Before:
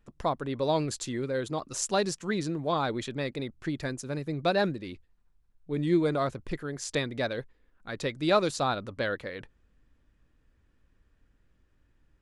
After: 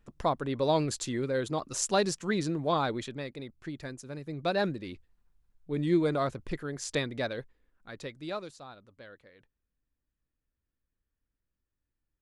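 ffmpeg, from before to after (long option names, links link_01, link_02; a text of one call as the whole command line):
ffmpeg -i in.wav -af "volume=6.5dB,afade=type=out:start_time=2.75:duration=0.53:silence=0.421697,afade=type=in:start_time=4.19:duration=0.6:silence=0.501187,afade=type=out:start_time=6.99:duration=1.12:silence=0.375837,afade=type=out:start_time=8.11:duration=0.49:silence=0.316228" out.wav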